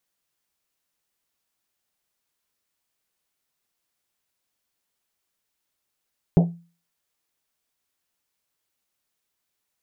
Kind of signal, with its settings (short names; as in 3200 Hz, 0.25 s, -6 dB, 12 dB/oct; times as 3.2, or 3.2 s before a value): Risset drum, pitch 170 Hz, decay 0.37 s, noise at 560 Hz, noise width 390 Hz, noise 20%